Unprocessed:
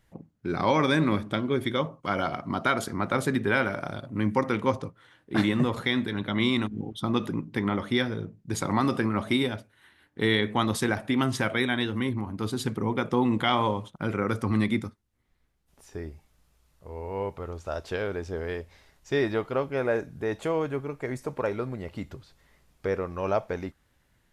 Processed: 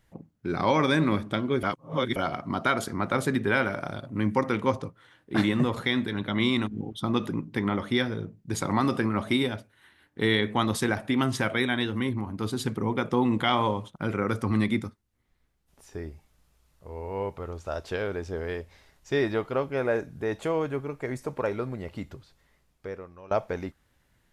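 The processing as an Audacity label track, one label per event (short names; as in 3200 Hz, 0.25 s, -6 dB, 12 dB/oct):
1.630000	2.160000	reverse
21.910000	23.310000	fade out, to -20.5 dB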